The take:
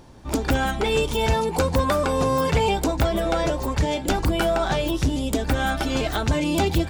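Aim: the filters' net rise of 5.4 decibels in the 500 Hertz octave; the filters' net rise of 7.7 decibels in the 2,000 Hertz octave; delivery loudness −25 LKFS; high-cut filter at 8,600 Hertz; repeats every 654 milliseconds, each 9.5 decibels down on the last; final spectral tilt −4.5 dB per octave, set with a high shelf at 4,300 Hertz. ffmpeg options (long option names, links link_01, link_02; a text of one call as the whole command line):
ffmpeg -i in.wav -af "lowpass=8600,equalizer=frequency=500:width_type=o:gain=6,equalizer=frequency=2000:width_type=o:gain=8.5,highshelf=frequency=4300:gain=7.5,aecho=1:1:654|1308|1962|2616:0.335|0.111|0.0365|0.012,volume=-7dB" out.wav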